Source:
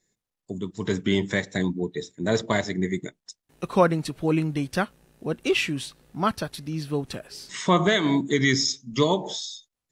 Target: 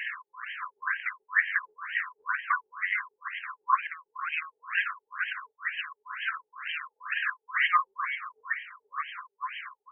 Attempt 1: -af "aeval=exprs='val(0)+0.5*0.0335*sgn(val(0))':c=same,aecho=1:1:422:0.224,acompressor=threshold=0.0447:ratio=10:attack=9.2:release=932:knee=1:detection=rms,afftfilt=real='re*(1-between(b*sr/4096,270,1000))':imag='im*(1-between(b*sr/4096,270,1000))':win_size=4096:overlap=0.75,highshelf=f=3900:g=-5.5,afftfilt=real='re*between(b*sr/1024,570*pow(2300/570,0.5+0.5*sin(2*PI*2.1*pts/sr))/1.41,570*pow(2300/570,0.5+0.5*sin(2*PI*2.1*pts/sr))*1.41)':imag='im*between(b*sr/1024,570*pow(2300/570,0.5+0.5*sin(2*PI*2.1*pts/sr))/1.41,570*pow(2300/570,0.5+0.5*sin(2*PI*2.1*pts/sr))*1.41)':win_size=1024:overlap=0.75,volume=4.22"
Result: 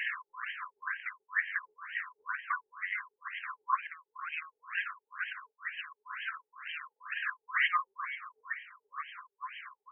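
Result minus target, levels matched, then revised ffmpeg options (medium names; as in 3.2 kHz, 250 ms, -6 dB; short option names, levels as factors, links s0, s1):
compression: peak gain reduction +6.5 dB
-af "aeval=exprs='val(0)+0.5*0.0335*sgn(val(0))':c=same,aecho=1:1:422:0.224,acompressor=threshold=0.106:ratio=10:attack=9.2:release=932:knee=1:detection=rms,afftfilt=real='re*(1-between(b*sr/4096,270,1000))':imag='im*(1-between(b*sr/4096,270,1000))':win_size=4096:overlap=0.75,highshelf=f=3900:g=-5.5,afftfilt=real='re*between(b*sr/1024,570*pow(2300/570,0.5+0.5*sin(2*PI*2.1*pts/sr))/1.41,570*pow(2300/570,0.5+0.5*sin(2*PI*2.1*pts/sr))*1.41)':imag='im*between(b*sr/1024,570*pow(2300/570,0.5+0.5*sin(2*PI*2.1*pts/sr))/1.41,570*pow(2300/570,0.5+0.5*sin(2*PI*2.1*pts/sr))*1.41)':win_size=1024:overlap=0.75,volume=4.22"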